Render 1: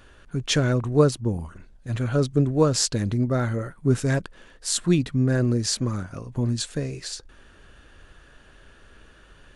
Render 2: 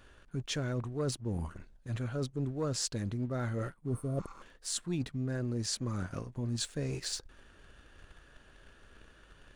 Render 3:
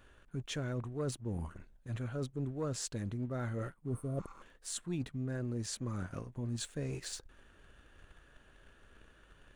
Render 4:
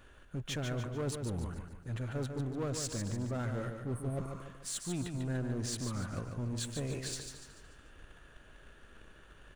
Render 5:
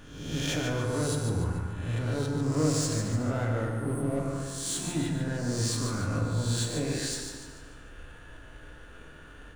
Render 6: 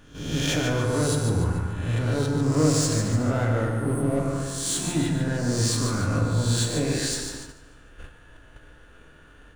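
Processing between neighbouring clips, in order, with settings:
spectral repair 3.92–4.39, 760–8200 Hz before; sample leveller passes 1; reverse; compressor 6:1, threshold -27 dBFS, peak gain reduction 16 dB; reverse; gain -5 dB
bell 4900 Hz -6 dB 0.6 oct; gain -3 dB
in parallel at -7 dB: wavefolder -39.5 dBFS; on the sum: feedback echo 0.146 s, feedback 45%, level -6.5 dB
spectral swells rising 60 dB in 0.94 s; FDN reverb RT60 1.5 s, low-frequency decay 1.3×, high-frequency decay 0.4×, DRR 1 dB; gain +2.5 dB
gate -43 dBFS, range -8 dB; gain +5.5 dB

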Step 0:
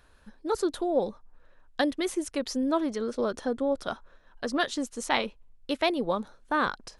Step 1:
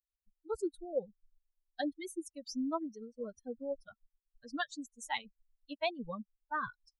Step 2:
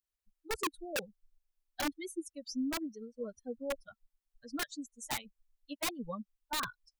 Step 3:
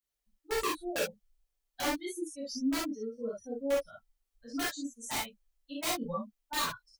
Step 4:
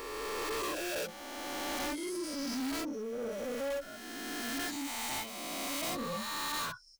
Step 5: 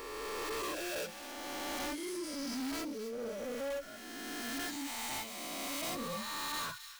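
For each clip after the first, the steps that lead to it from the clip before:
per-bin expansion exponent 3; gain -4.5 dB
wrapped overs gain 29 dB; gain +1 dB
non-linear reverb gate 90 ms flat, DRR -7.5 dB; gain -4.5 dB
spectral swells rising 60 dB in 2.21 s; soft clip -31 dBFS, distortion -9 dB; gain -1.5 dB
thin delay 0.263 s, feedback 47%, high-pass 2000 Hz, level -10 dB; gain -2.5 dB

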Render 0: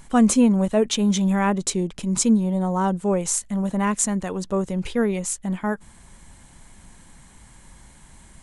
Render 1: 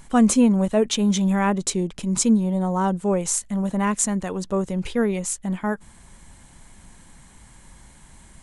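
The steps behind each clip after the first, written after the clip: nothing audible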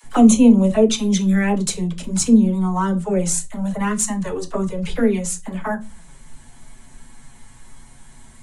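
envelope flanger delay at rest 9.4 ms, full sweep at -15 dBFS; dispersion lows, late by 43 ms, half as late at 440 Hz; reverb, pre-delay 4 ms, DRR 6 dB; gain +4 dB

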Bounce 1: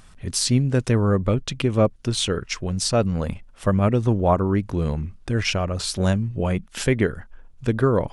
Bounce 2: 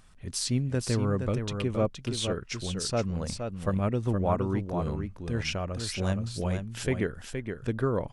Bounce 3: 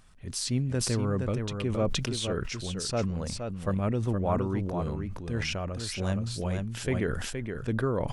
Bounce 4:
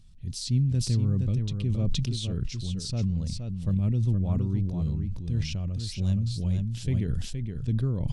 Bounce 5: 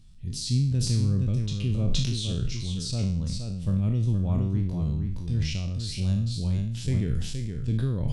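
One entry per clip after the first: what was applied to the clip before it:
echo 0.469 s -6.5 dB; gain -8.5 dB
sustainer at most 39 dB/s; gain -1.5 dB
EQ curve 150 Hz 0 dB, 480 Hz -18 dB, 1500 Hz -24 dB, 3900 Hz -6 dB, 11000 Hz -14 dB; gain +6 dB
spectral trails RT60 0.56 s

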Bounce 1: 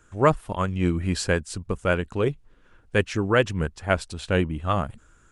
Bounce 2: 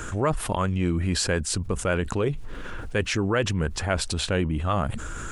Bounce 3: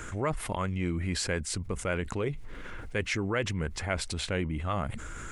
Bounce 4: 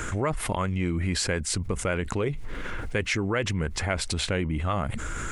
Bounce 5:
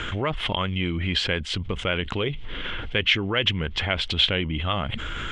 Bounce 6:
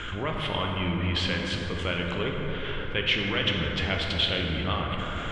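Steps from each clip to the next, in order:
fast leveller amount 70%; gain -7 dB
bell 2100 Hz +10 dB 0.22 oct; gain -6.5 dB
compressor 2:1, threshold -35 dBFS, peak gain reduction 6.5 dB; gain +8.5 dB
synth low-pass 3200 Hz, resonance Q 7.5
plate-style reverb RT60 4.4 s, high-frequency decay 0.35×, DRR -1 dB; gain -5.5 dB

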